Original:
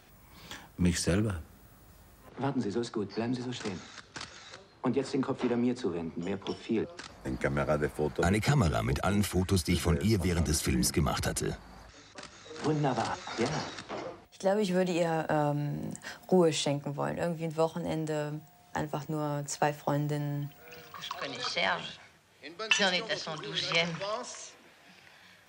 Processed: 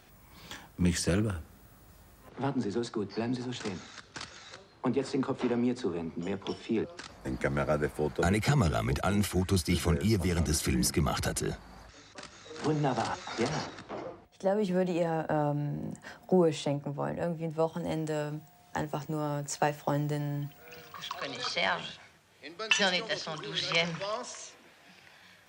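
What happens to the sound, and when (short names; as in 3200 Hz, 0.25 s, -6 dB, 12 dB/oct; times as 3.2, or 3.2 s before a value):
13.66–17.73 high shelf 2000 Hz -9 dB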